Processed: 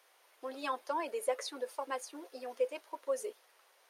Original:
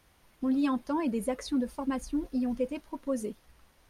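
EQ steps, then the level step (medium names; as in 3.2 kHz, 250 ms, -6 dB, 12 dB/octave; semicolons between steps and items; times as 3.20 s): steep high-pass 420 Hz 36 dB/octave; 0.0 dB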